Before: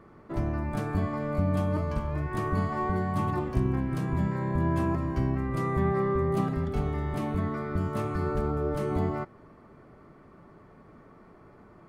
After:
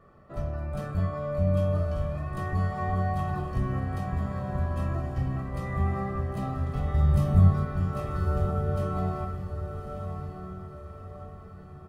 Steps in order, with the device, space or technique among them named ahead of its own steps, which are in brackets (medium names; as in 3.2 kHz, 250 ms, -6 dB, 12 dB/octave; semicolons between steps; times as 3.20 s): band-stop 2.1 kHz, Q 10; microphone above a desk (comb 1.6 ms, depth 56%; reverberation RT60 0.50 s, pre-delay 11 ms, DRR 0.5 dB); 6.94–7.65 s: tone controls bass +12 dB, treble +8 dB; echo that smears into a reverb 1146 ms, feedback 44%, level -7.5 dB; trim -6.5 dB